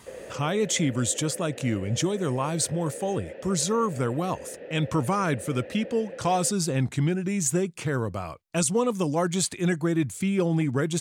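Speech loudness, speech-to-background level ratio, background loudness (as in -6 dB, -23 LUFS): -26.5 LUFS, 14.5 dB, -41.0 LUFS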